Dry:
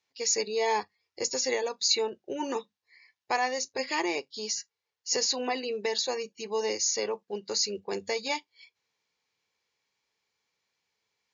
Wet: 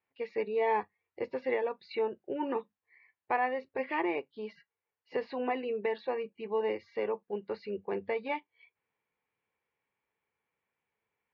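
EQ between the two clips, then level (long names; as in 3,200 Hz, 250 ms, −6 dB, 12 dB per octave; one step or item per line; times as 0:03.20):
low-pass filter 2,900 Hz 24 dB per octave
high-frequency loss of the air 360 metres
0.0 dB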